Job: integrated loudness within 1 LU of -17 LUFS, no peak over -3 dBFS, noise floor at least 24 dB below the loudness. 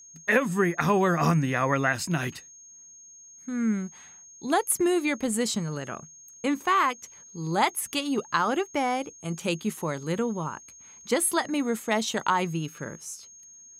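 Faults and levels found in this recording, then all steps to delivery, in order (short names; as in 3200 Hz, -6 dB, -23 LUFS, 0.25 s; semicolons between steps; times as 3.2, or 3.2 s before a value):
steady tone 6500 Hz; tone level -47 dBFS; loudness -26.5 LUFS; peak -8.5 dBFS; loudness target -17.0 LUFS
-> notch 6500 Hz, Q 30; gain +9.5 dB; limiter -3 dBFS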